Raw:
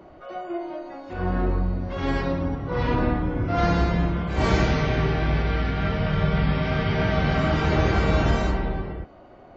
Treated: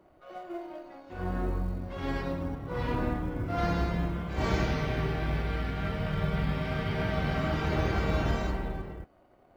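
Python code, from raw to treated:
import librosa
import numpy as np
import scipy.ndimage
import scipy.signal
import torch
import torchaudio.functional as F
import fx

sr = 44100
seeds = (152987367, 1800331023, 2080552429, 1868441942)

y = fx.law_mismatch(x, sr, coded='A')
y = y * librosa.db_to_amplitude(-7.0)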